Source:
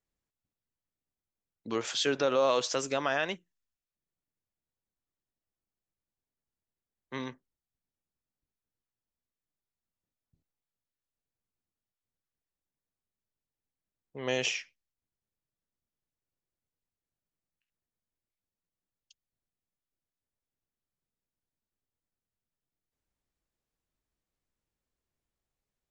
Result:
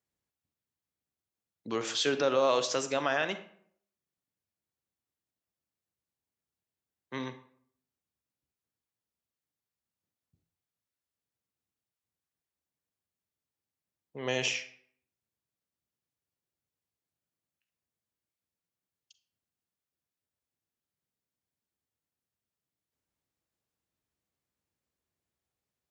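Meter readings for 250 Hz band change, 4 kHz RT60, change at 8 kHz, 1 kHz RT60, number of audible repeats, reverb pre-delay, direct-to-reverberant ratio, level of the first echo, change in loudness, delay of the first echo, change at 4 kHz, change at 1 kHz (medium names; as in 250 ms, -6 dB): 0.0 dB, 0.40 s, +0.5 dB, 0.60 s, no echo, 34 ms, 10.5 dB, no echo, 0.0 dB, no echo, +0.5 dB, +0.5 dB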